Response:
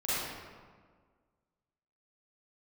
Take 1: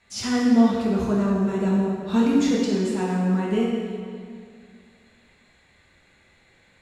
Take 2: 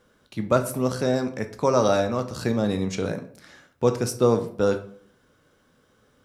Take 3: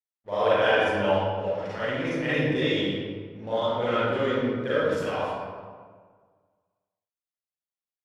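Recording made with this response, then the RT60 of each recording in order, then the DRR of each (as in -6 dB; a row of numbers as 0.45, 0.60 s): 3; 2.2, 0.55, 1.7 s; -5.5, 7.0, -12.5 dB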